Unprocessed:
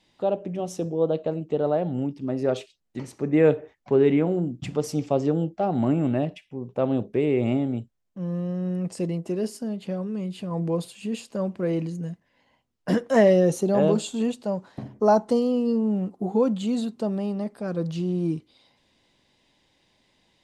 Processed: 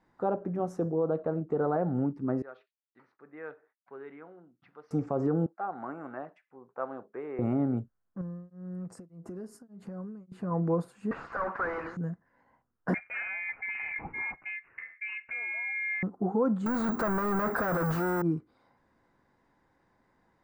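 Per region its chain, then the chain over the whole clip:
2.42–4.91 s: inverse Chebyshev low-pass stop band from 7 kHz + expander -52 dBFS + differentiator
5.46–7.39 s: high-pass 1.2 kHz + tilt EQ -4 dB/octave
8.21–10.32 s: compression 10:1, threshold -37 dBFS + tone controls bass +5 dB, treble +9 dB + tremolo of two beating tones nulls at 1.7 Hz
11.11–11.97 s: high-pass 1.5 kHz + overdrive pedal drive 43 dB, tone 4.1 kHz, clips at -21 dBFS + tape spacing loss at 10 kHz 30 dB
12.94–16.03 s: frequency inversion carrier 3.6 kHz + careless resampling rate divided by 8×, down none, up filtered
16.66–18.22 s: overdrive pedal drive 38 dB, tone 6.2 kHz, clips at -16 dBFS + careless resampling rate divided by 2×, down filtered, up zero stuff
whole clip: band-stop 600 Hz, Q 13; peak limiter -17.5 dBFS; resonant high shelf 2.1 kHz -13.5 dB, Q 3; trim -2 dB

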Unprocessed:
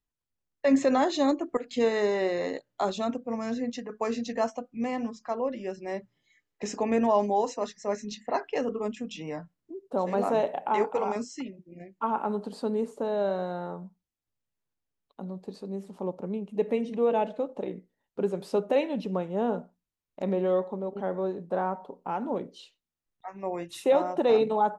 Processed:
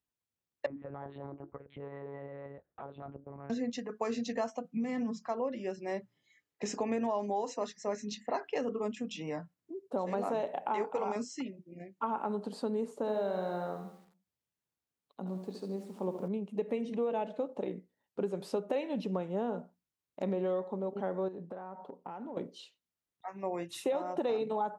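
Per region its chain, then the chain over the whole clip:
0.66–3.50 s: Chebyshev band-pass 120–1400 Hz + compression 4:1, threshold -41 dBFS + monotone LPC vocoder at 8 kHz 140 Hz
4.64–5.27 s: comb 4.5 ms, depth 56% + compression, threshold -29 dBFS + peaking EQ 170 Hz +13.5 dB 0.47 oct
12.97–16.28 s: feedback delay 70 ms, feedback 48%, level -9 dB + bit-crushed delay 84 ms, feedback 55%, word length 9-bit, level -13 dB
21.28–22.37 s: treble shelf 5.2 kHz -9.5 dB + band-stop 2.2 kHz, Q 26 + compression 16:1, threshold -36 dBFS
whole clip: high-pass 78 Hz; compression 6:1, threshold -27 dBFS; trim -2 dB

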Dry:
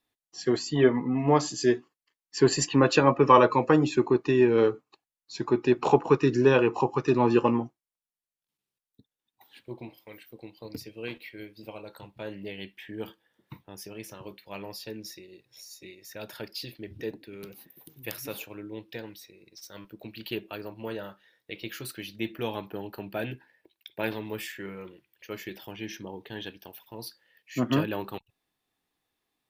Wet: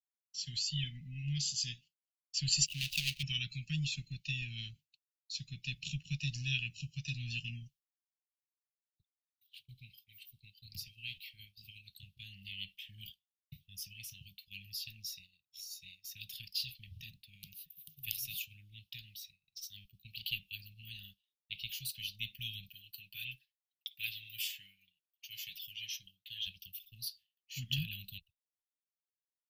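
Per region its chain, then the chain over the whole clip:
2.66–3.23 s: median filter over 41 samples + tilt shelf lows -7 dB, about 710 Hz
22.68–26.47 s: tone controls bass -13 dB, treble +1 dB + comb 7.1 ms, depth 55%
whole clip: Chebyshev band-stop 160–2800 Hz, order 4; expander -53 dBFS; graphic EQ 125/250/500/1000/8000 Hz -10/-6/-6/-5/-7 dB; trim +4 dB

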